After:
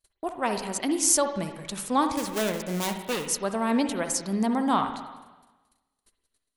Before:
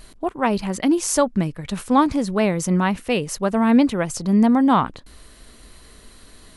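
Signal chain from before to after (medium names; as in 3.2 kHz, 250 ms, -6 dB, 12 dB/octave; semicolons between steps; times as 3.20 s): 2.17–3.28 s: dead-time distortion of 0.28 ms; gate -39 dBFS, range -38 dB; tone controls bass -8 dB, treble +10 dB; reverberation RT60 1.2 s, pre-delay 51 ms, DRR 6.5 dB; trim -6.5 dB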